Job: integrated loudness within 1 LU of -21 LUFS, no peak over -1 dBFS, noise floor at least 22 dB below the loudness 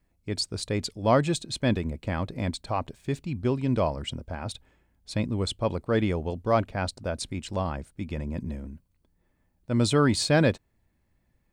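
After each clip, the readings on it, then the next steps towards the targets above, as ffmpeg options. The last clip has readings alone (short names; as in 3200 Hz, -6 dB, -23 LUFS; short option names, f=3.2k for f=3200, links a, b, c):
loudness -28.0 LUFS; peak -8.5 dBFS; loudness target -21.0 LUFS
-> -af "volume=7dB"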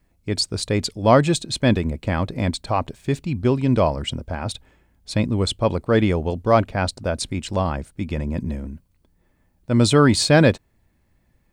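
loudness -21.0 LUFS; peak -1.5 dBFS; noise floor -64 dBFS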